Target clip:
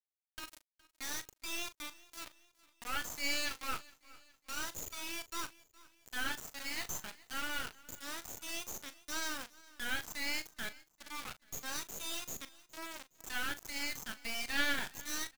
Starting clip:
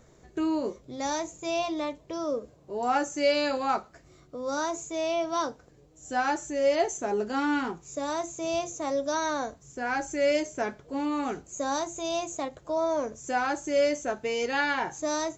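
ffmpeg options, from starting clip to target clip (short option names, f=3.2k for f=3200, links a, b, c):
-filter_complex "[0:a]afftdn=nr=16:nf=-39,highpass=f=1.5k:w=0.5412,highpass=f=1.5k:w=1.3066,highshelf=f=6.1k:g=-4,asplit=2[a][b];[b]acompressor=threshold=-52dB:ratio=6,volume=-2dB[c];[a][c]amix=inputs=2:normalize=0,acrusher=bits=4:dc=4:mix=0:aa=0.000001,asplit=2[d][e];[e]adelay=39,volume=-13.5dB[f];[d][f]amix=inputs=2:normalize=0,asplit=2[g][h];[h]aecho=0:1:415|830|1245:0.0841|0.0395|0.0186[i];[g][i]amix=inputs=2:normalize=0,volume=1.5dB"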